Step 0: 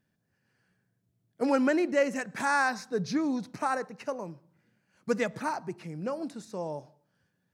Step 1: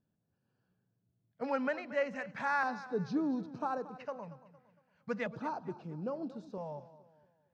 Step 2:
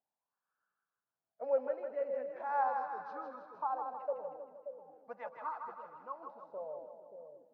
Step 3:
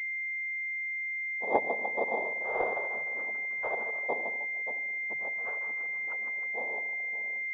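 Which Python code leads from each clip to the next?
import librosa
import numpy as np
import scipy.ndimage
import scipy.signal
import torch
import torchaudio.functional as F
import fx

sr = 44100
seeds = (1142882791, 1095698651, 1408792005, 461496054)

y1 = fx.filter_lfo_notch(x, sr, shape='square', hz=0.38, low_hz=340.0, high_hz=2000.0, q=0.95)
y1 = fx.air_absorb(y1, sr, metres=230.0)
y1 = fx.echo_warbled(y1, sr, ms=230, feedback_pct=39, rate_hz=2.8, cents=51, wet_db=-16.0)
y1 = F.gain(torch.from_numpy(y1), -3.5).numpy()
y2 = fx.low_shelf(y1, sr, hz=300.0, db=-8.5)
y2 = fx.wah_lfo(y2, sr, hz=0.39, low_hz=440.0, high_hz=1300.0, q=6.3)
y2 = fx.echo_split(y2, sr, split_hz=550.0, low_ms=579, high_ms=158, feedback_pct=52, wet_db=-5.5)
y2 = F.gain(torch.from_numpy(y2), 8.0).numpy()
y3 = fx.dynamic_eq(y2, sr, hz=490.0, q=1.0, threshold_db=-44.0, ratio=4.0, max_db=5)
y3 = fx.noise_vocoder(y3, sr, seeds[0], bands=6)
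y3 = fx.pwm(y3, sr, carrier_hz=2100.0)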